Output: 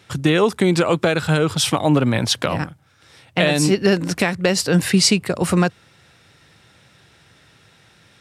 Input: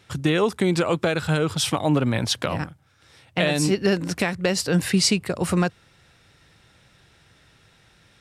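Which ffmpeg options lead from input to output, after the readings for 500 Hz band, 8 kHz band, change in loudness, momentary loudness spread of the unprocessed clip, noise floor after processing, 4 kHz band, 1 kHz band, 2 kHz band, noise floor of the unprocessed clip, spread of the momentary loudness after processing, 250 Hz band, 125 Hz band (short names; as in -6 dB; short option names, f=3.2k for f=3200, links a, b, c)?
+4.5 dB, +4.5 dB, +4.5 dB, 5 LU, -54 dBFS, +4.5 dB, +4.5 dB, +4.5 dB, -58 dBFS, 5 LU, +4.5 dB, +4.0 dB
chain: -af "highpass=84,volume=4.5dB"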